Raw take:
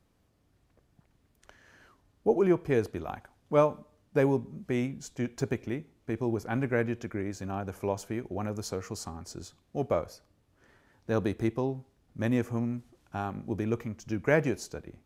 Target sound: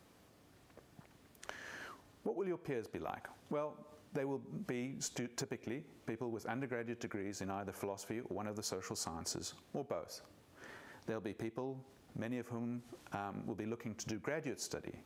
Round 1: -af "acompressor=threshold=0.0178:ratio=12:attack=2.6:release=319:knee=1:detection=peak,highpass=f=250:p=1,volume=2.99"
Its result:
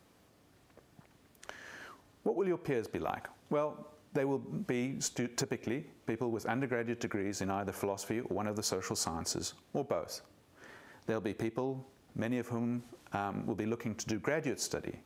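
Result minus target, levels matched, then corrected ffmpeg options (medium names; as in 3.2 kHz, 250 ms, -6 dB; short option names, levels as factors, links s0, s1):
compression: peak gain reduction -7 dB
-af "acompressor=threshold=0.0075:ratio=12:attack=2.6:release=319:knee=1:detection=peak,highpass=f=250:p=1,volume=2.99"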